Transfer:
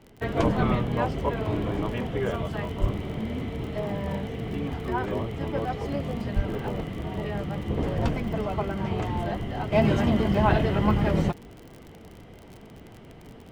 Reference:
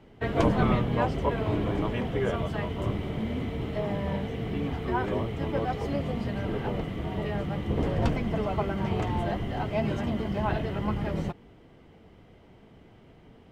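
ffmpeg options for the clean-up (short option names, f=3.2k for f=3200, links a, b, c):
-filter_complex "[0:a]adeclick=t=4,asplit=3[a][b][c];[a]afade=t=out:st=2.8:d=0.02[d];[b]highpass=f=140:w=0.5412,highpass=f=140:w=1.3066,afade=t=in:st=2.8:d=0.02,afade=t=out:st=2.92:d=0.02[e];[c]afade=t=in:st=2.92:d=0.02[f];[d][e][f]amix=inputs=3:normalize=0,asplit=3[g][h][i];[g]afade=t=out:st=6.35:d=0.02[j];[h]highpass=f=140:w=0.5412,highpass=f=140:w=1.3066,afade=t=in:st=6.35:d=0.02,afade=t=out:st=6.47:d=0.02[k];[i]afade=t=in:st=6.47:d=0.02[l];[j][k][l]amix=inputs=3:normalize=0,asetnsamples=n=441:p=0,asendcmd='9.72 volume volume -7dB',volume=0dB"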